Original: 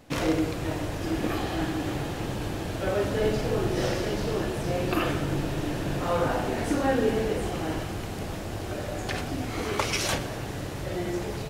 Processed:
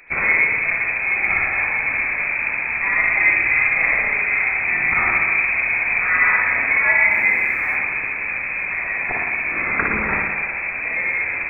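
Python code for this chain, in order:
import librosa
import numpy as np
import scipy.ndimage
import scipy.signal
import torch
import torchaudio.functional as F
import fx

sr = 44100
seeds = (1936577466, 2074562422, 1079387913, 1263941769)

y = fx.freq_invert(x, sr, carrier_hz=2500)
y = fx.rev_spring(y, sr, rt60_s=1.2, pass_ms=(56,), chirp_ms=40, drr_db=0.5)
y = fx.dmg_noise_colour(y, sr, seeds[0], colour='white', level_db=-64.0, at=(7.1, 7.75), fade=0.02)
y = y * librosa.db_to_amplitude(6.0)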